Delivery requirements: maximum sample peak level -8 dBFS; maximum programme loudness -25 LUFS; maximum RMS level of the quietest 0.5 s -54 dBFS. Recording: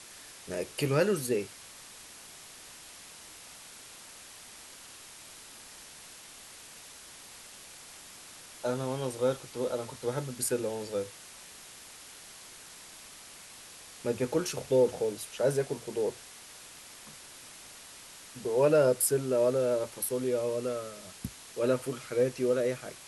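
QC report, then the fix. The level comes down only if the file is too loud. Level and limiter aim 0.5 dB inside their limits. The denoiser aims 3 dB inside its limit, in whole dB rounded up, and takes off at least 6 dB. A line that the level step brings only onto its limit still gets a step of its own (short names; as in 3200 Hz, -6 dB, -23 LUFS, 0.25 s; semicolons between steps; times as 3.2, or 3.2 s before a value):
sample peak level -13.5 dBFS: OK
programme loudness -30.5 LUFS: OK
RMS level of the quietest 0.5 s -50 dBFS: fail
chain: denoiser 7 dB, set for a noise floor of -50 dBFS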